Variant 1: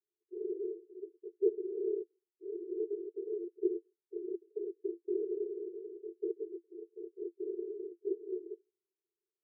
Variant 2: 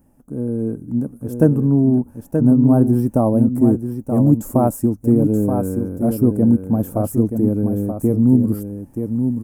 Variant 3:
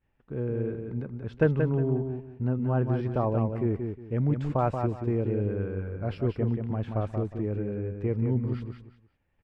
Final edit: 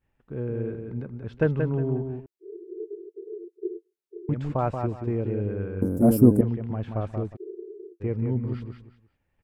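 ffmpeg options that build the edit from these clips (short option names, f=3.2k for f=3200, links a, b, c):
-filter_complex "[0:a]asplit=2[a][b];[2:a]asplit=4[c][d][e][f];[c]atrim=end=2.262[g];[a]atrim=start=2.258:end=4.292[h];[d]atrim=start=4.288:end=5.822[i];[1:a]atrim=start=5.818:end=6.412[j];[e]atrim=start=6.408:end=7.37[k];[b]atrim=start=7.35:end=8.02[l];[f]atrim=start=8[m];[g][h]acrossfade=d=0.004:c1=hsin:c2=hsin[n];[n][i]acrossfade=d=0.004:c1=hsin:c2=hsin[o];[o][j]acrossfade=d=0.004:c1=hsin:c2=hsin[p];[p][k]acrossfade=d=0.004:c1=hsin:c2=hsin[q];[q][l]acrossfade=d=0.02:c1=tri:c2=tri[r];[r][m]acrossfade=d=0.02:c1=tri:c2=tri"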